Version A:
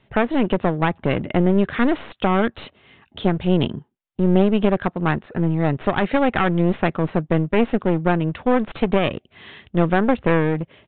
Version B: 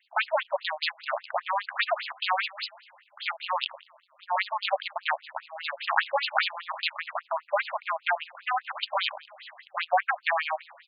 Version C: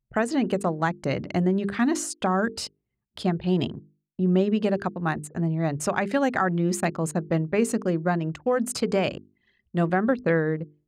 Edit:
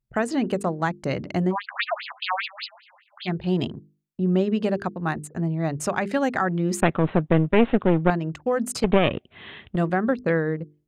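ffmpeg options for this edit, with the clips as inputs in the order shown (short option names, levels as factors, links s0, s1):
-filter_complex "[0:a]asplit=2[s0][s1];[2:a]asplit=4[s2][s3][s4][s5];[s2]atrim=end=1.56[s6];[1:a]atrim=start=1.5:end=3.31[s7];[s3]atrim=start=3.25:end=6.822[s8];[s0]atrim=start=6.818:end=8.102[s9];[s4]atrim=start=8.098:end=8.842[s10];[s1]atrim=start=8.838:end=9.762[s11];[s5]atrim=start=9.758[s12];[s6][s7]acrossfade=d=0.06:c1=tri:c2=tri[s13];[s13][s8]acrossfade=d=0.06:c1=tri:c2=tri[s14];[s14][s9]acrossfade=d=0.004:c1=hsin:c2=hsin[s15];[s15][s10]acrossfade=d=0.004:c1=hsin:c2=hsin[s16];[s16][s11]acrossfade=d=0.004:c1=hsin:c2=hsin[s17];[s17][s12]acrossfade=d=0.004:c1=hsin:c2=hsin"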